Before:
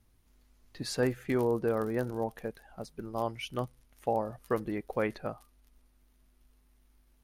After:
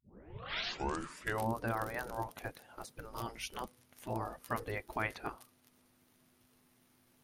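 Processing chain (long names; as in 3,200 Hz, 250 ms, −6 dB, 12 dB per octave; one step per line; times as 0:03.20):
turntable start at the beginning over 1.55 s
brickwall limiter −21.5 dBFS, peak gain reduction 7 dB
gate on every frequency bin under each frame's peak −10 dB weak
level +5 dB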